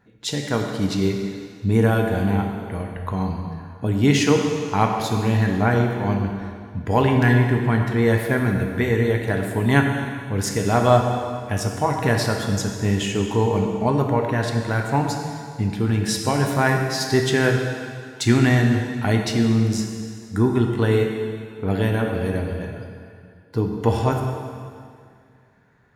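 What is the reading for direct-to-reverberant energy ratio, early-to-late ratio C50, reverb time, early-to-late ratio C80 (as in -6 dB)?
2.0 dB, 3.5 dB, 2.2 s, 4.5 dB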